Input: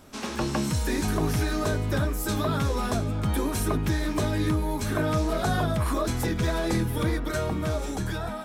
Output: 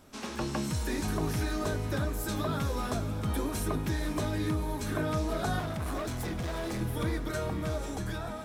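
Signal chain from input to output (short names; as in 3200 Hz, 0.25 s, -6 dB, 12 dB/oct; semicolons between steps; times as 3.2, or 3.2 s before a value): 5.59–6.81 hard clip -26.5 dBFS, distortion -15 dB; diffused feedback echo 0.471 s, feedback 54%, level -13 dB; gain -5.5 dB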